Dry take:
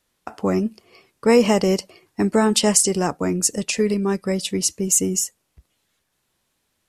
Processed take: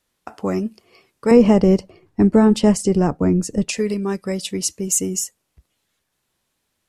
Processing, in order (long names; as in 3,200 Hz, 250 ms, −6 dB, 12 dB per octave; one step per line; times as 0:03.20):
0:01.31–0:03.69: spectral tilt −3.5 dB per octave
level −1.5 dB